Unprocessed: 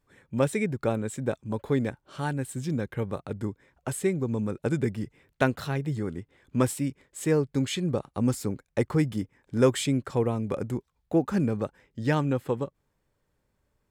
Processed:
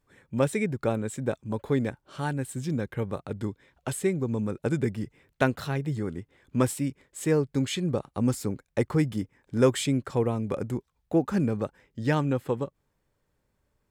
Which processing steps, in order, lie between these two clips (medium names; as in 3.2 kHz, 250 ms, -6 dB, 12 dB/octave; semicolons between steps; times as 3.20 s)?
3.37–3.94 s: peaking EQ 3.5 kHz +7 dB 0.9 oct